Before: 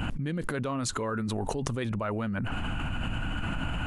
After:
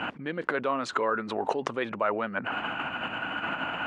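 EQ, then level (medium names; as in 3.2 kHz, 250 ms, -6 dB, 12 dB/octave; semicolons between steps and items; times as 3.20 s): band-pass 440–2600 Hz; +7.0 dB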